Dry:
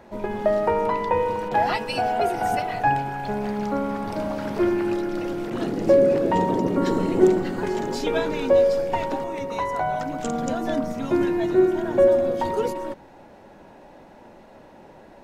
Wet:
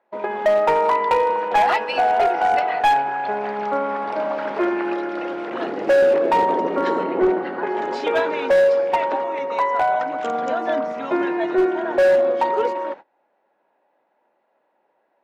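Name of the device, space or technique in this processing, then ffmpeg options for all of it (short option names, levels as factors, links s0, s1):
walkie-talkie: -filter_complex "[0:a]highpass=530,lowpass=2500,asoftclip=type=hard:threshold=0.106,agate=range=0.0631:threshold=0.00794:ratio=16:detection=peak,asettb=1/sr,asplit=3[s0][s1][s2];[s0]atrim=end=7.034[s3];[s1]atrim=start=7.03:end=7.79,asetpts=PTS-STARTPTS,afade=t=in:d=0.004:c=qsin,afade=t=out:st=0.756:d=0.004:c=qsin,aemphasis=mode=reproduction:type=75kf[s4];[s2]atrim=start=7.786[s5];[s3][s4]acrossfade=d=0.004:c1=hsin:c2=qsin[s6];[s6][s5]acrossfade=d=0.004:c1=qsin:c2=hsin,volume=2.37"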